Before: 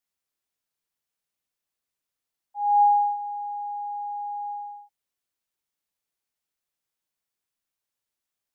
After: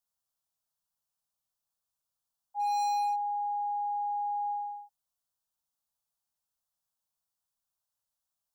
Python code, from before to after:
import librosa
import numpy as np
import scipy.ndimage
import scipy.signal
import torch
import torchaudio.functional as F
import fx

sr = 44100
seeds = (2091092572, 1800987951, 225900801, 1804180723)

y = np.clip(x, -10.0 ** (-27.5 / 20.0), 10.0 ** (-27.5 / 20.0))
y = fx.fixed_phaser(y, sr, hz=890.0, stages=4)